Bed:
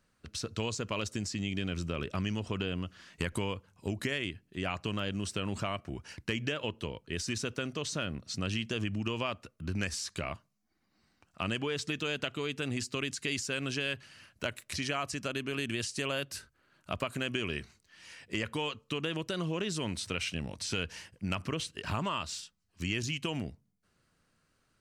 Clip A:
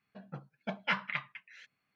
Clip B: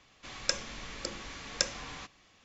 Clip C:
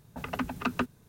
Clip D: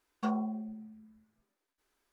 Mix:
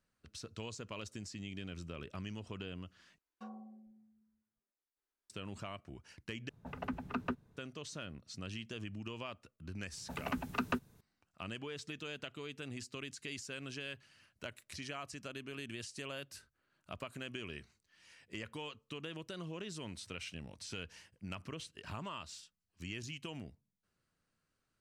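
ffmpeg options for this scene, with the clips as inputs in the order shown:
-filter_complex "[3:a]asplit=2[a][b];[0:a]volume=-10.5dB[c];[a]lowpass=f=1.7k:p=1[d];[c]asplit=3[e][f][g];[e]atrim=end=3.184[h];[4:a]atrim=end=2.12,asetpts=PTS-STARTPTS,volume=-17.5dB[i];[f]atrim=start=5.296:end=6.494[j];[d]atrim=end=1.08,asetpts=PTS-STARTPTS,volume=-6.5dB[k];[g]atrim=start=7.566[l];[b]atrim=end=1.08,asetpts=PTS-STARTPTS,volume=-5dB,afade=t=in:d=0.004:c=hsin,afade=t=out:st=1.076:d=0.004:c=hsin,adelay=9930[m];[h][i]acrossfade=d=0.004:c1=hsin:c2=hsin[n];[n][j]acrossfade=d=0.004:c1=hsin:c2=hsin[o];[o][k]acrossfade=d=0.004:c1=hsin:c2=hsin[p];[p][l]acrossfade=d=0.004:c1=hsin:c2=hsin[q];[q][m]amix=inputs=2:normalize=0"

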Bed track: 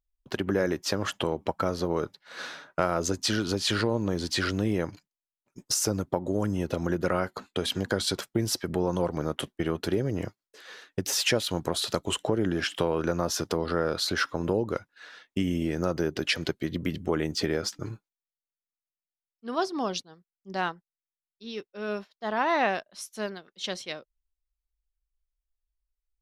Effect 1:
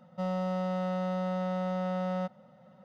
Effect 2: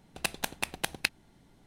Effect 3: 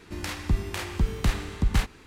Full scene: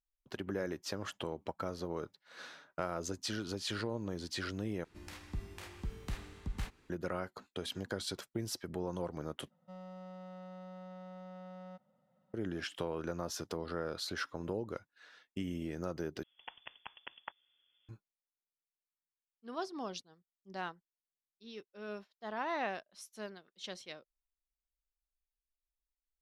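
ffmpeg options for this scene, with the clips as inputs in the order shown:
-filter_complex "[0:a]volume=-11.5dB[a];[2:a]lowpass=f=3k:t=q:w=0.5098,lowpass=f=3k:t=q:w=0.6013,lowpass=f=3k:t=q:w=0.9,lowpass=f=3k:t=q:w=2.563,afreqshift=-3500[b];[a]asplit=4[c][d][e][f];[c]atrim=end=4.844[g];[3:a]atrim=end=2.06,asetpts=PTS-STARTPTS,volume=-16dB[h];[d]atrim=start=6.896:end=9.504[i];[1:a]atrim=end=2.84,asetpts=PTS-STARTPTS,volume=-17.5dB[j];[e]atrim=start=12.336:end=16.234[k];[b]atrim=end=1.66,asetpts=PTS-STARTPTS,volume=-15dB[l];[f]atrim=start=17.886[m];[g][h]acrossfade=d=0.004:c1=hsin:c2=hsin[n];[n][i]acrossfade=d=0.004:c1=hsin:c2=hsin[o];[o][j]acrossfade=d=0.004:c1=hsin:c2=hsin[p];[p][k]acrossfade=d=0.004:c1=hsin:c2=hsin[q];[q][l]acrossfade=d=0.004:c1=hsin:c2=hsin[r];[r][m]acrossfade=d=0.004:c1=hsin:c2=hsin"

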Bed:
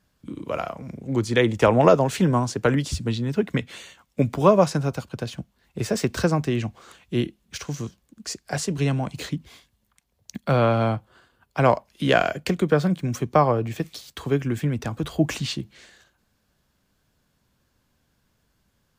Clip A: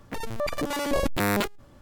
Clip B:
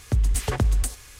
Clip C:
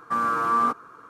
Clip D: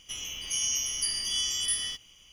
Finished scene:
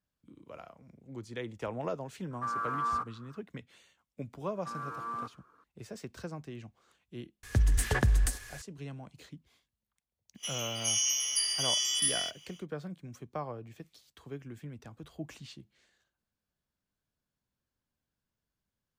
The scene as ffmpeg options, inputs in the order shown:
-filter_complex "[3:a]asplit=2[a][b];[0:a]volume=-20dB[c];[a]equalizer=f=1.3k:t=o:w=1.5:g=7.5[d];[2:a]equalizer=f=1.7k:w=6.6:g=13.5[e];[4:a]highpass=460[f];[d]atrim=end=1.09,asetpts=PTS-STARTPTS,volume=-17dB,afade=t=in:d=0.004:c=hsin,afade=t=out:st=1.086:d=0.004:c=hsin,adelay=2310[g];[b]atrim=end=1.09,asetpts=PTS-STARTPTS,volume=-16.5dB,afade=t=in:d=0.004:c=hsin,afade=t=out:st=1.086:d=0.004:c=hsin,adelay=4550[h];[e]atrim=end=1.19,asetpts=PTS-STARTPTS,volume=-4dB,afade=t=in:d=0.004:c=hsin,afade=t=out:st=1.186:d=0.004:c=hsin,adelay=7430[i];[f]atrim=end=2.32,asetpts=PTS-STARTPTS,afade=t=in:d=0.1,afade=t=out:st=2.22:d=0.1,adelay=455994S[j];[c][g][h][i][j]amix=inputs=5:normalize=0"

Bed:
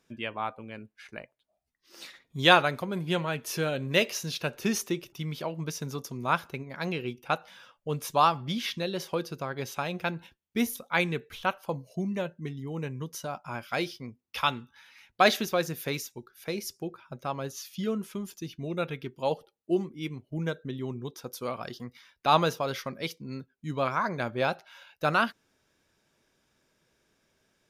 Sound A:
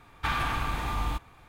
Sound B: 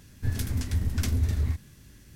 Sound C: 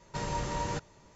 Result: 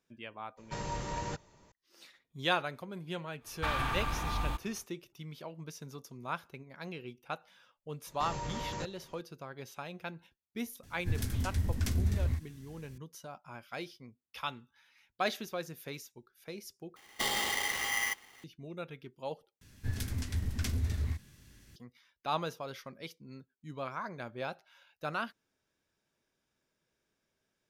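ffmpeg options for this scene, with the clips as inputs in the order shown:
-filter_complex "[3:a]asplit=2[a][b];[1:a]asplit=2[c][d];[2:a]asplit=2[e][f];[0:a]volume=-11dB[g];[c]bandreject=f=2.1k:w=26[h];[b]alimiter=level_in=4.5dB:limit=-24dB:level=0:latency=1:release=10,volume=-4.5dB[i];[d]aeval=exprs='val(0)*sgn(sin(2*PI*2000*n/s))':c=same[j];[f]equalizer=f=3k:t=o:w=2.9:g=4[k];[g]asplit=3[l][m][n];[l]atrim=end=16.964[o];[j]atrim=end=1.48,asetpts=PTS-STARTPTS,volume=-4dB[p];[m]atrim=start=18.436:end=19.614[q];[k]atrim=end=2.15,asetpts=PTS-STARTPTS,volume=-7dB[r];[n]atrim=start=21.756[s];[a]atrim=end=1.15,asetpts=PTS-STARTPTS,volume=-4dB,afade=t=in:d=0.004:c=hsin,afade=t=out:st=1.146:d=0.004:c=hsin,adelay=570[t];[h]atrim=end=1.48,asetpts=PTS-STARTPTS,volume=-4dB,afade=t=in:d=0.1,afade=t=out:st=1.38:d=0.1,adelay=3390[u];[i]atrim=end=1.15,asetpts=PTS-STARTPTS,volume=-2.5dB,afade=t=in:d=0.004:c=hsin,afade=t=out:st=1.146:d=0.004:c=hsin,adelay=8060[v];[e]atrim=end=2.15,asetpts=PTS-STARTPTS,volume=-4.5dB,afade=t=in:d=0.004:c=hsin,afade=t=out:st=2.146:d=0.004:c=hsin,adelay=10830[w];[o][p]acrossfade=d=0.004:c1=hsin:c2=hsin[x];[x][q]acrossfade=d=0.004:c1=hsin:c2=hsin[y];[y][r]acrossfade=d=0.004:c1=hsin:c2=hsin[z];[z][s]acrossfade=d=0.004:c1=hsin:c2=hsin[aa];[aa][t][u][v][w]amix=inputs=5:normalize=0"

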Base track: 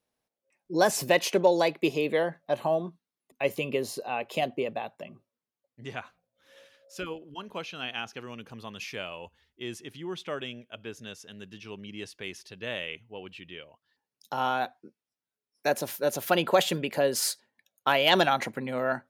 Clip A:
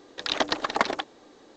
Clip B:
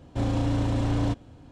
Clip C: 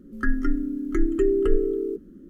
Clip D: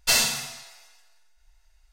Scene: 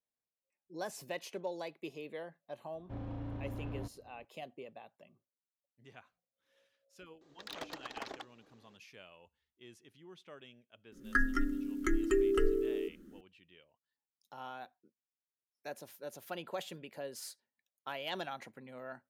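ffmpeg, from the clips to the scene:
-filter_complex "[0:a]volume=-18dB[a];[2:a]lowpass=2.2k[b];[1:a]volume=20dB,asoftclip=hard,volume=-20dB[c];[3:a]tiltshelf=f=880:g=-7.5[d];[b]atrim=end=1.51,asetpts=PTS-STARTPTS,volume=-16.5dB,afade=t=in:d=0.004:c=hsin,afade=t=out:st=1.506:d=0.004:c=hsin,adelay=2740[e];[c]atrim=end=1.56,asetpts=PTS-STARTPTS,volume=-15.5dB,afade=t=in:d=0.004:c=hsin,afade=t=out:st=1.556:d=0.004:c=hsin,adelay=7210[f];[d]atrim=end=2.29,asetpts=PTS-STARTPTS,volume=-3dB,afade=t=in:d=0.004:c=hsin,afade=t=out:st=2.286:d=0.004:c=hsin,adelay=10920[g];[a][e][f][g]amix=inputs=4:normalize=0"

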